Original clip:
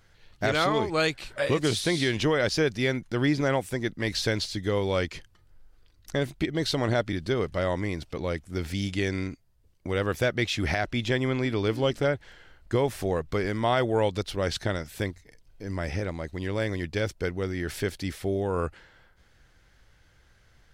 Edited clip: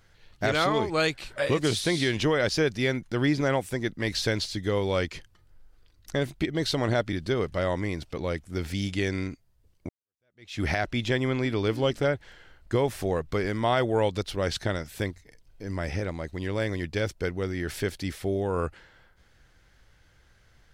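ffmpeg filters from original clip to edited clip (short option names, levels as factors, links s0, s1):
-filter_complex "[0:a]asplit=2[s0][s1];[s0]atrim=end=9.89,asetpts=PTS-STARTPTS,afade=t=out:st=9.886:d=0.004:c=hsin[s2];[s1]atrim=start=9.89,asetpts=PTS-STARTPTS,afade=t=in:d=0.71:c=exp[s3];[s2][s3]concat=n=2:v=0:a=1"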